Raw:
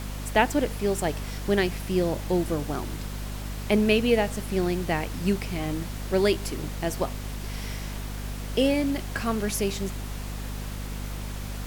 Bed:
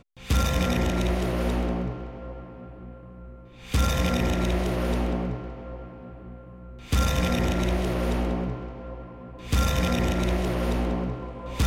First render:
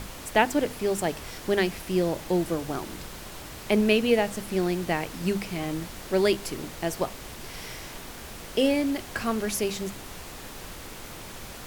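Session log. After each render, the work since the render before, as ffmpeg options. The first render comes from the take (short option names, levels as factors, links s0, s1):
-af "bandreject=f=50:t=h:w=6,bandreject=f=100:t=h:w=6,bandreject=f=150:t=h:w=6,bandreject=f=200:t=h:w=6,bandreject=f=250:t=h:w=6"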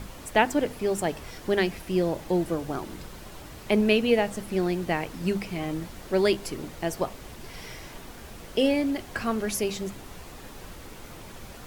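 -af "afftdn=nr=6:nf=-42"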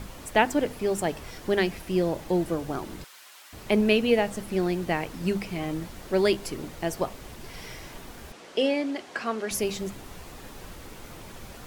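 -filter_complex "[0:a]asettb=1/sr,asplit=3[s0][s1][s2];[s0]atrim=end=3.044[s3];[s1]atrim=start=3.04:end=3.53,asetpts=PTS-STARTPTS,afade=t=in:d=0.004:c=qsin,afade=t=out:st=0.486:d=0.004:c=qsin,highpass=1400[s4];[s2]atrim=start=3.526[s5];[s3][s4]acrossfade=d=0.004:c1=hsin:c2=qsin[s6];[s6][s5]acrossfade=d=0.004:c1=qsin:c2=hsin,asettb=1/sr,asplit=3[s7][s8][s9];[s7]atrim=end=8.324[s10];[s8]atrim=start=8.32:end=9.51,asetpts=PTS-STARTPTS,afade=t=in:d=0.004:c=qsin,afade=t=out:st=1.186:d=0.004:c=qsin,highpass=300,lowpass=7000[s11];[s9]atrim=start=9.506[s12];[s10][s11]acrossfade=d=0.004:c1=hsin:c2=qsin[s13];[s13][s12]acrossfade=d=0.004:c1=qsin:c2=hsin"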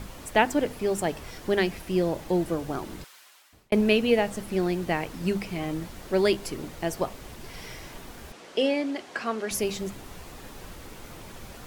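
-filter_complex "[0:a]asplit=2[s0][s1];[s0]atrim=end=3.72,asetpts=PTS-STARTPTS,afade=t=out:st=2.99:d=0.73[s2];[s1]atrim=start=3.72,asetpts=PTS-STARTPTS,afade=t=in:d=0.004:c=hsin[s3];[s2][s3]concat=n=2:v=0:a=1"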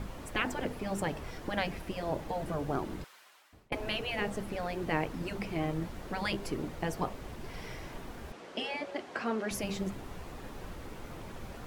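-af "afftfilt=real='re*lt(hypot(re,im),0.282)':imag='im*lt(hypot(re,im),0.282)':win_size=1024:overlap=0.75,highshelf=f=2900:g=-10"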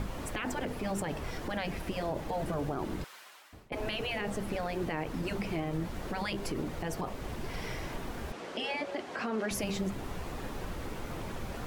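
-filter_complex "[0:a]asplit=2[s0][s1];[s1]acompressor=threshold=0.00891:ratio=6,volume=1.06[s2];[s0][s2]amix=inputs=2:normalize=0,alimiter=level_in=1.06:limit=0.0631:level=0:latency=1:release=35,volume=0.944"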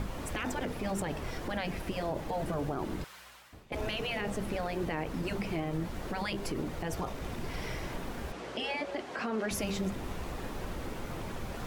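-filter_complex "[1:a]volume=0.0668[s0];[0:a][s0]amix=inputs=2:normalize=0"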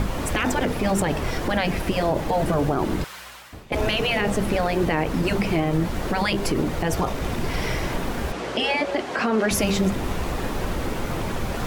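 -af "volume=3.98"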